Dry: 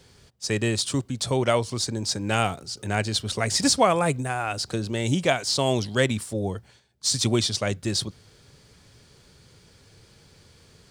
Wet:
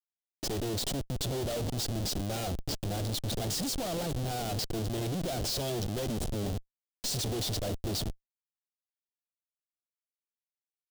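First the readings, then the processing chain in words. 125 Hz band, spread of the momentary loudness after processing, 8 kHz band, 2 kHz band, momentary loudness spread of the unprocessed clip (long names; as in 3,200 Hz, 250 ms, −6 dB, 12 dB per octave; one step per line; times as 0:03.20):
−6.0 dB, 4 LU, −8.5 dB, −16.0 dB, 8 LU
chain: harmonic generator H 2 −11 dB, 3 −30 dB, 4 −43 dB, 6 −21 dB, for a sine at −6 dBFS
comparator with hysteresis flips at −32 dBFS
flat-topped bell 1,500 Hz −9.5 dB
level −3.5 dB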